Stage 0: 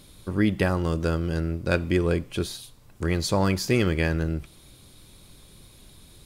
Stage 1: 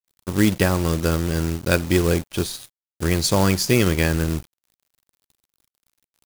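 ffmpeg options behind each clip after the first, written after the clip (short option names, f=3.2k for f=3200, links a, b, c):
-af "acrusher=bits=4:mode=log:mix=0:aa=0.000001,bass=f=250:g=1,treble=f=4k:g=6,aeval=exprs='sgn(val(0))*max(abs(val(0))-0.0119,0)':c=same,volume=4.5dB"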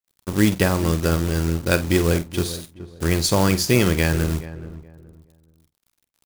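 -filter_complex "[0:a]asplit=2[a][b];[b]adelay=48,volume=-14dB[c];[a][c]amix=inputs=2:normalize=0,asplit=2[d][e];[e]adelay=424,lowpass=f=1.1k:p=1,volume=-14dB,asplit=2[f][g];[g]adelay=424,lowpass=f=1.1k:p=1,volume=0.29,asplit=2[h][i];[i]adelay=424,lowpass=f=1.1k:p=1,volume=0.29[j];[d][f][h][j]amix=inputs=4:normalize=0"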